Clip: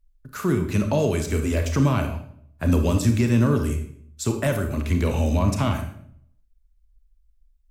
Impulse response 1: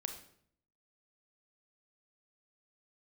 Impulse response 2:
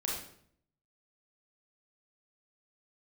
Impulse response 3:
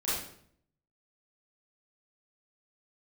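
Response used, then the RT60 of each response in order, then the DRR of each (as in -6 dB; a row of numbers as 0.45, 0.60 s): 1; 0.60, 0.60, 0.60 s; 5.0, -4.0, -11.5 dB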